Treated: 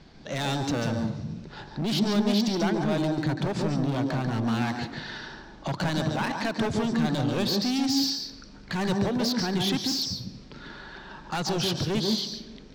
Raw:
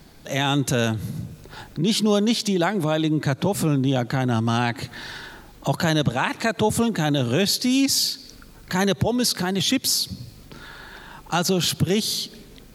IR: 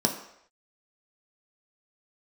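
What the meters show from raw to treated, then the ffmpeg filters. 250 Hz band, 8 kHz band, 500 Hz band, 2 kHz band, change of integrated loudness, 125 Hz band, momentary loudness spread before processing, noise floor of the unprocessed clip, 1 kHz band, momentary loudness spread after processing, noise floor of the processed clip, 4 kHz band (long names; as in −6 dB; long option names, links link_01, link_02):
−3.5 dB, −10.5 dB, −6.0 dB, −6.0 dB, −5.0 dB, −5.0 dB, 17 LU, −47 dBFS, −5.0 dB, 15 LU, −47 dBFS, −5.0 dB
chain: -filter_complex "[0:a]lowpass=frequency=5500:width=0.5412,lowpass=frequency=5500:width=1.3066,asoftclip=type=hard:threshold=-22dB,asplit=2[link_01][link_02];[1:a]atrim=start_sample=2205,lowshelf=frequency=130:gain=-9,adelay=141[link_03];[link_02][link_03]afir=irnorm=-1:irlink=0,volume=-16dB[link_04];[link_01][link_04]amix=inputs=2:normalize=0,volume=-3dB"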